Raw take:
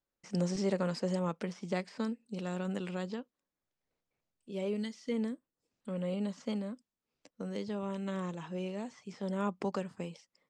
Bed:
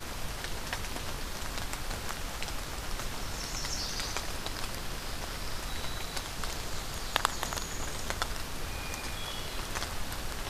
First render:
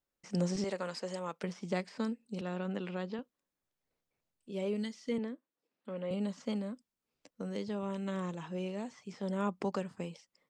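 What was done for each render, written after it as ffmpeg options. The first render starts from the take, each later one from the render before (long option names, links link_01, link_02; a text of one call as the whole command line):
ffmpeg -i in.wav -filter_complex "[0:a]asettb=1/sr,asplit=3[link_01][link_02][link_03];[link_01]atrim=end=0.644[link_04];[link_02]atrim=start=0.64:end=1.44,asetpts=PTS-STARTPTS,afade=type=in:duration=0.004:curve=qsin,afade=type=out:start_time=0.796:duration=0.004:curve=qsin,highpass=frequency=670:poles=1[link_05];[link_03]atrim=start=1.436[link_06];[link_04][link_05]acrossfade=duration=0.004:curve1=hsin:curve2=qsin[link_07];[link_07][link_06]acrossfade=duration=0.004:curve1=qsin:curve2=hsin,asettb=1/sr,asplit=3[link_08][link_09][link_10];[link_08]atrim=end=2.414[link_11];[link_09]atrim=start=2.41:end=3.19,asetpts=PTS-STARTPTS,afade=type=in:duration=0.004:curve=qsin,afade=type=out:start_time=0.776:duration=0.004:curve=qsin,highpass=150,lowpass=4000[link_12];[link_10]atrim=start=3.186[link_13];[link_11][link_12]acrossfade=duration=0.004:curve1=hsin:curve2=qsin[link_14];[link_14][link_13]acrossfade=duration=0.004:curve1=qsin:curve2=hsin,asettb=1/sr,asplit=3[link_15][link_16][link_17];[link_15]atrim=end=5.184[link_18];[link_16]atrim=start=5.18:end=6.11,asetpts=PTS-STARTPTS,afade=type=in:duration=0.004:curve=qsin,afade=type=out:start_time=0.926:duration=0.004:curve=qsin,highpass=260,lowpass=3600[link_19];[link_17]atrim=start=6.106[link_20];[link_18][link_19]acrossfade=duration=0.004:curve1=hsin:curve2=qsin[link_21];[link_21][link_20]acrossfade=duration=0.004:curve1=qsin:curve2=hsin" out.wav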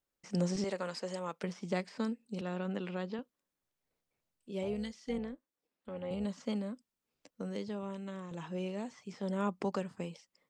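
ffmpeg -i in.wav -filter_complex "[0:a]asettb=1/sr,asplit=3[link_01][link_02][link_03];[link_01]atrim=end=4.634[link_04];[link_02]atrim=start=4.63:end=6.25,asetpts=PTS-STARTPTS,afade=type=in:duration=0.004:curve=qsin,afade=type=out:start_time=1.616:duration=0.004:curve=qsin,tremolo=f=280:d=0.462[link_05];[link_03]atrim=start=6.246[link_06];[link_04][link_05]acrossfade=duration=0.004:curve1=hsin:curve2=qsin[link_07];[link_07][link_06]acrossfade=duration=0.004:curve1=qsin:curve2=hsin,asplit=2[link_08][link_09];[link_08]atrim=end=8.31,asetpts=PTS-STARTPTS,afade=type=out:start_time=7.42:duration=0.89:silence=0.354813[link_10];[link_09]atrim=start=8.31,asetpts=PTS-STARTPTS,afade=type=in:duration=0.004:curve=hsin:silence=0.354813[link_11];[link_10][link_11]concat=n=2:v=0:a=1" out.wav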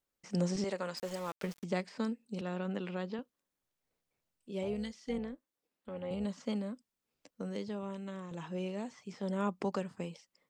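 ffmpeg -i in.wav -filter_complex "[0:a]asettb=1/sr,asplit=3[link_01][link_02][link_03];[link_01]atrim=end=0.974[link_04];[link_02]atrim=start=0.97:end=1.64,asetpts=PTS-STARTPTS,afade=type=in:duration=0.004:curve=qsin,afade=type=out:start_time=0.666:duration=0.004:curve=qsin,aeval=exprs='val(0)*gte(abs(val(0)),0.00562)':channel_layout=same[link_05];[link_03]atrim=start=1.636[link_06];[link_04][link_05]acrossfade=duration=0.004:curve1=hsin:curve2=qsin[link_07];[link_07][link_06]acrossfade=duration=0.004:curve1=qsin:curve2=hsin" out.wav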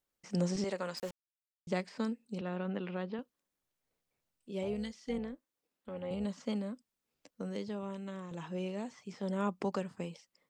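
ffmpeg -i in.wav -filter_complex "[0:a]asettb=1/sr,asplit=3[link_01][link_02][link_03];[link_01]atrim=end=2.384[link_04];[link_02]atrim=start=2.38:end=3.19,asetpts=PTS-STARTPTS,afade=type=in:duration=0.004:curve=qsin,afade=type=out:start_time=0.806:duration=0.004:curve=qsin,lowpass=3500[link_05];[link_03]atrim=start=3.186[link_06];[link_04][link_05]acrossfade=duration=0.004:curve1=hsin:curve2=qsin[link_07];[link_07][link_06]acrossfade=duration=0.004:curve1=qsin:curve2=hsin,asplit=3[link_08][link_09][link_10];[link_08]atrim=end=1.11,asetpts=PTS-STARTPTS,afade=type=out:start_time=1.106:duration=0.004:curve=hsin[link_11];[link_09]atrim=start=1.11:end=1.67,asetpts=PTS-STARTPTS,volume=0[link_12];[link_10]atrim=start=1.67,asetpts=PTS-STARTPTS,afade=type=in:duration=0.004:curve=hsin[link_13];[link_11][link_12][link_13]concat=n=3:v=0:a=1" out.wav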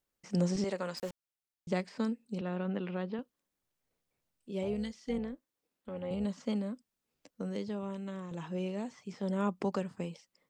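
ffmpeg -i in.wav -af "lowshelf=frequency=430:gain=3" out.wav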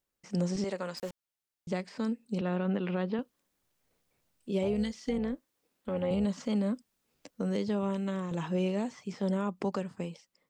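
ffmpeg -i in.wav -af "dynaudnorm=framelen=960:gausssize=5:maxgain=8dB,alimiter=limit=-21.5dB:level=0:latency=1:release=152" out.wav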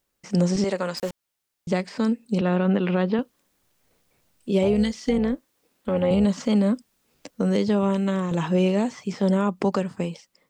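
ffmpeg -i in.wav -af "volume=9.5dB" out.wav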